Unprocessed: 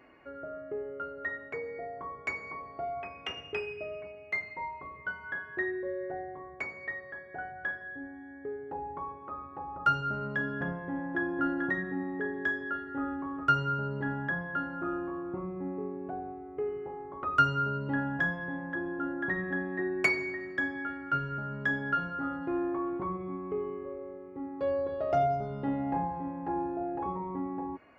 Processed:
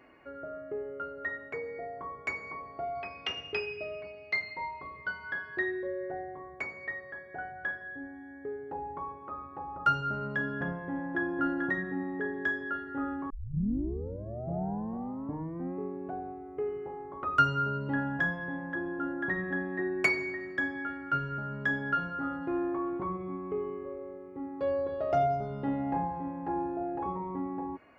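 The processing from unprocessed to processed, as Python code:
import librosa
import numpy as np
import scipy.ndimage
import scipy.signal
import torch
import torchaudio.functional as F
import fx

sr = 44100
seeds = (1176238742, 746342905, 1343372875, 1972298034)

y = fx.lowpass_res(x, sr, hz=4600.0, q=6.1, at=(2.95, 5.87))
y = fx.edit(y, sr, fx.tape_start(start_s=13.3, length_s=2.48), tone=tone)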